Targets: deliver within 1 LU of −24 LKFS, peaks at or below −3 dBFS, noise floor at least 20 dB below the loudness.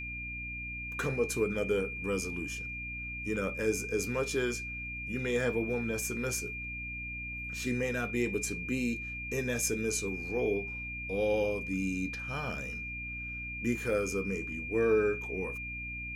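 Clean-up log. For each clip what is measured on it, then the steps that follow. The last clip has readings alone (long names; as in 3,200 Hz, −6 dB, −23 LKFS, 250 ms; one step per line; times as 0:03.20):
mains hum 60 Hz; hum harmonics up to 300 Hz; level of the hum −42 dBFS; interfering tone 2,400 Hz; level of the tone −38 dBFS; integrated loudness −33.0 LKFS; sample peak −17.5 dBFS; target loudness −24.0 LKFS
→ hum removal 60 Hz, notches 5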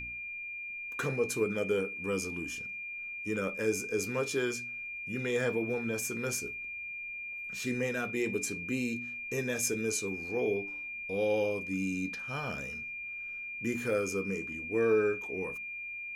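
mains hum none found; interfering tone 2,400 Hz; level of the tone −38 dBFS
→ notch filter 2,400 Hz, Q 30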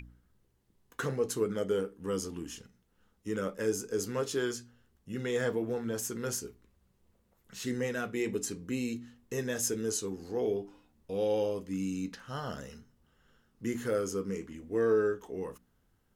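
interfering tone none found; integrated loudness −34.0 LKFS; sample peak −18.5 dBFS; target loudness −24.0 LKFS
→ level +10 dB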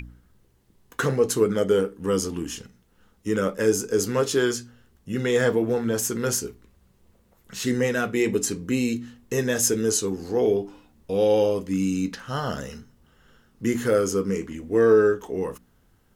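integrated loudness −24.0 LKFS; sample peak −8.5 dBFS; background noise floor −62 dBFS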